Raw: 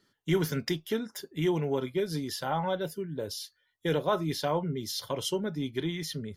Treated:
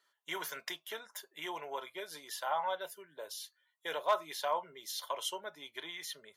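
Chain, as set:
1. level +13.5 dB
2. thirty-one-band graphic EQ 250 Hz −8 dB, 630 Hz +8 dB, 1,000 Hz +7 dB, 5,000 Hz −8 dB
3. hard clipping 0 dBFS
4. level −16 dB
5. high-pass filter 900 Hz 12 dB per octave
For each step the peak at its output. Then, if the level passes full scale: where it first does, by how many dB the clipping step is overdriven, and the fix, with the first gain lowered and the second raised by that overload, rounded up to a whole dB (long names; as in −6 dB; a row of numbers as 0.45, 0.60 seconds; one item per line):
−2.0, +4.0, 0.0, −16.0, −17.5 dBFS
step 2, 4.0 dB
step 1 +9.5 dB, step 4 −12 dB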